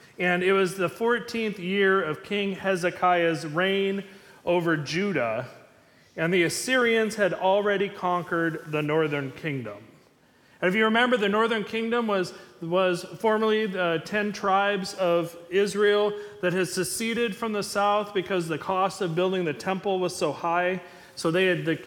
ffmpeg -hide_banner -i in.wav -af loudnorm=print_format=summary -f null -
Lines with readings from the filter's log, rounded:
Input Integrated:    -25.4 LUFS
Input True Peak:      -7.5 dBTP
Input LRA:             1.9 LU
Input Threshold:     -35.7 LUFS